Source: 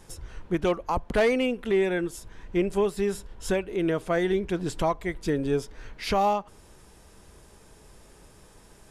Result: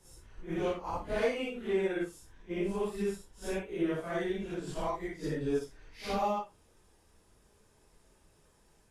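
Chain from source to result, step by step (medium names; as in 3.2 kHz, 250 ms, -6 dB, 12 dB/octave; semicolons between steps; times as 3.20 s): phase randomisation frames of 200 ms; hum notches 60/120/180 Hz; in parallel at -2 dB: peak limiter -20 dBFS, peak gain reduction 10 dB; on the sum: upward expansion 1.5:1, over -32 dBFS; trim -9 dB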